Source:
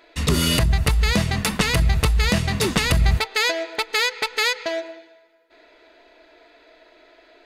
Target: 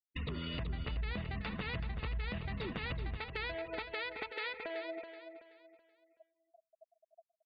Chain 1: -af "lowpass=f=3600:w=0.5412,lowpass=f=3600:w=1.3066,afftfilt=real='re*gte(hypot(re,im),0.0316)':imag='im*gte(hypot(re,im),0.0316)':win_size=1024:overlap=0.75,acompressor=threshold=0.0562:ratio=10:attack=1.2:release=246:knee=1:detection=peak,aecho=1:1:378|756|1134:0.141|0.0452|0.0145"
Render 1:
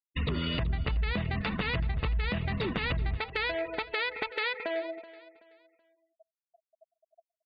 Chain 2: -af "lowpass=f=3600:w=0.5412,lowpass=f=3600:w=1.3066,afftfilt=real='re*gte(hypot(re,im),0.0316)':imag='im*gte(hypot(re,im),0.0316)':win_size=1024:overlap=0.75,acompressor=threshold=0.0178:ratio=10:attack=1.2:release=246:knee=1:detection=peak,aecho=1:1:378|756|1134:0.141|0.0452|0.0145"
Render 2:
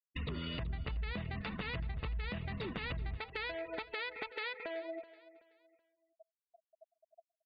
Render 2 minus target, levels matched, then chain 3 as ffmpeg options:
echo-to-direct -8.5 dB
-af "lowpass=f=3600:w=0.5412,lowpass=f=3600:w=1.3066,afftfilt=real='re*gte(hypot(re,im),0.0316)':imag='im*gte(hypot(re,im),0.0316)':win_size=1024:overlap=0.75,acompressor=threshold=0.0178:ratio=10:attack=1.2:release=246:knee=1:detection=peak,aecho=1:1:378|756|1134|1512:0.376|0.12|0.0385|0.0123"

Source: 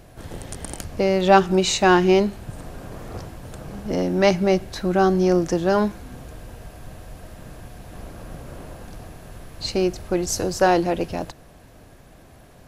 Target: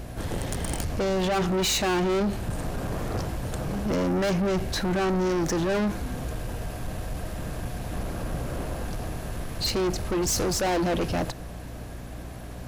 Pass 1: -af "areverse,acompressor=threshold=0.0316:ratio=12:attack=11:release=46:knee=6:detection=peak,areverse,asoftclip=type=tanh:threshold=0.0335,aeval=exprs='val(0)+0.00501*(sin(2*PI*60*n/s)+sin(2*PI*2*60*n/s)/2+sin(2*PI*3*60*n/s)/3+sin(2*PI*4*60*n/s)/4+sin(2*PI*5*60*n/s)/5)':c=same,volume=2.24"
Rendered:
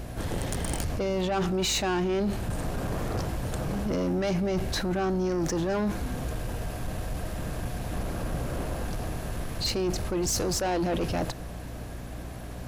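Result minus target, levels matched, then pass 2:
compression: peak gain reduction +9 dB
-af "areverse,acompressor=threshold=0.1:ratio=12:attack=11:release=46:knee=6:detection=peak,areverse,asoftclip=type=tanh:threshold=0.0335,aeval=exprs='val(0)+0.00501*(sin(2*PI*60*n/s)+sin(2*PI*2*60*n/s)/2+sin(2*PI*3*60*n/s)/3+sin(2*PI*4*60*n/s)/4+sin(2*PI*5*60*n/s)/5)':c=same,volume=2.24"

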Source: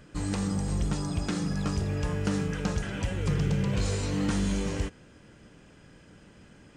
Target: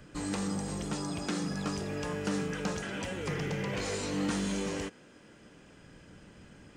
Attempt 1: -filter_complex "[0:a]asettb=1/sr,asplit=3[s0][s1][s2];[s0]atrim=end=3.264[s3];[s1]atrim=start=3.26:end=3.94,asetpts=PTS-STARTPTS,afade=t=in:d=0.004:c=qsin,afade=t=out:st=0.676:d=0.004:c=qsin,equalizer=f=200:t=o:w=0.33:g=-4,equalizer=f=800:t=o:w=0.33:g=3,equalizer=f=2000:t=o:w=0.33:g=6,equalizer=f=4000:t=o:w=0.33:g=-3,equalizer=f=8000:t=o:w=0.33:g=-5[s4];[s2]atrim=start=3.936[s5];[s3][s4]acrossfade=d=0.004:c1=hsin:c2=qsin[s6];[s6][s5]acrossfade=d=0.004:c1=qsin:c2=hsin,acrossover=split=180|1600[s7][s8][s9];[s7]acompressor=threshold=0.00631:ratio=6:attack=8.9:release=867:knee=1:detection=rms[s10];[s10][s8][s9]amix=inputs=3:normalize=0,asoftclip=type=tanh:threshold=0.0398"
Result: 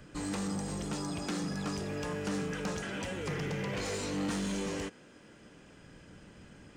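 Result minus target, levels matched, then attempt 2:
saturation: distortion +10 dB
-filter_complex "[0:a]asettb=1/sr,asplit=3[s0][s1][s2];[s0]atrim=end=3.264[s3];[s1]atrim=start=3.26:end=3.94,asetpts=PTS-STARTPTS,afade=t=in:d=0.004:c=qsin,afade=t=out:st=0.676:d=0.004:c=qsin,equalizer=f=200:t=o:w=0.33:g=-4,equalizer=f=800:t=o:w=0.33:g=3,equalizer=f=2000:t=o:w=0.33:g=6,equalizer=f=4000:t=o:w=0.33:g=-3,equalizer=f=8000:t=o:w=0.33:g=-5[s4];[s2]atrim=start=3.936[s5];[s3][s4]acrossfade=d=0.004:c1=hsin:c2=qsin[s6];[s6][s5]acrossfade=d=0.004:c1=qsin:c2=hsin,acrossover=split=180|1600[s7][s8][s9];[s7]acompressor=threshold=0.00631:ratio=6:attack=8.9:release=867:knee=1:detection=rms[s10];[s10][s8][s9]amix=inputs=3:normalize=0,asoftclip=type=tanh:threshold=0.0944"

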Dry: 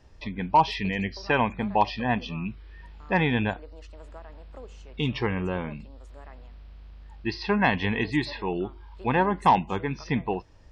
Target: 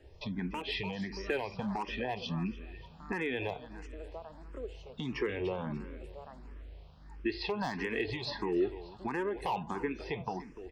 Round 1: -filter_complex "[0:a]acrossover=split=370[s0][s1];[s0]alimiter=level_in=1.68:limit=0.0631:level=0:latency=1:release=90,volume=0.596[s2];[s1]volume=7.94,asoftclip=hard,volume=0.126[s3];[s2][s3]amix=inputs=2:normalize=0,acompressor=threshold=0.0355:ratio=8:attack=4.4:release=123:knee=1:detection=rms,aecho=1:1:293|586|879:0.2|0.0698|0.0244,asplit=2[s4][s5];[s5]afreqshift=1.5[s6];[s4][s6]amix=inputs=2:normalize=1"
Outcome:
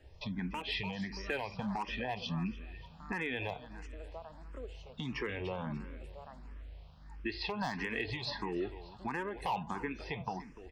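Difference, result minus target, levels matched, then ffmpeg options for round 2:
500 Hz band -3.5 dB
-filter_complex "[0:a]acrossover=split=370[s0][s1];[s0]alimiter=level_in=1.68:limit=0.0631:level=0:latency=1:release=90,volume=0.596[s2];[s1]volume=7.94,asoftclip=hard,volume=0.126[s3];[s2][s3]amix=inputs=2:normalize=0,acompressor=threshold=0.0355:ratio=8:attack=4.4:release=123:knee=1:detection=rms,equalizer=f=380:t=o:w=0.83:g=7.5,aecho=1:1:293|586|879:0.2|0.0698|0.0244,asplit=2[s4][s5];[s5]afreqshift=1.5[s6];[s4][s6]amix=inputs=2:normalize=1"

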